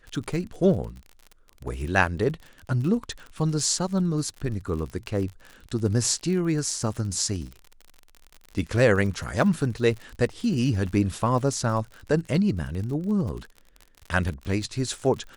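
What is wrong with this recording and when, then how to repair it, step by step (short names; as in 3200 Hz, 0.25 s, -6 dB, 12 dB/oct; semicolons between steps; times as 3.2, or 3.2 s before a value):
crackle 51/s -33 dBFS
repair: de-click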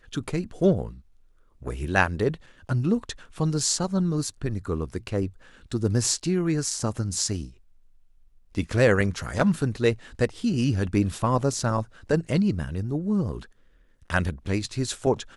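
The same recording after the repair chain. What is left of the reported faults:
none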